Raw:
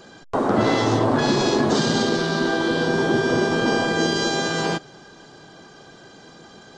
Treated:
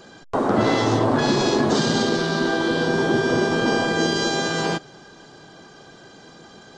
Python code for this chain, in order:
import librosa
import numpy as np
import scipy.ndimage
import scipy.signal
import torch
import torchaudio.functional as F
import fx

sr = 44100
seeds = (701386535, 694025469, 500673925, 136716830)

y = x